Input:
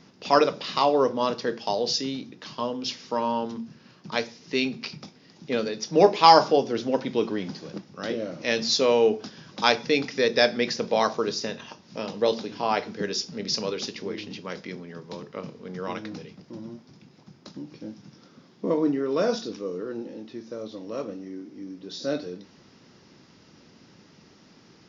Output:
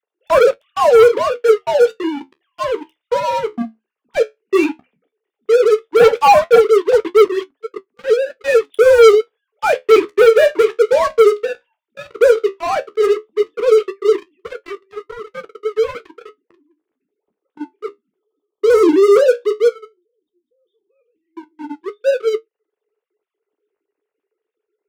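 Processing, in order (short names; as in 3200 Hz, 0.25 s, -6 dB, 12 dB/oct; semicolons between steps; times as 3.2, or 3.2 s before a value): sine-wave speech; spectral gain 19.68–21.37, 250–1900 Hz -17 dB; bell 430 Hz +13 dB 0.4 oct; spectral delete 18.2–20.9, 1300–3000 Hz; sample leveller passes 5; flange 0.13 Hz, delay 8.8 ms, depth 7.1 ms, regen -55%; gain -5 dB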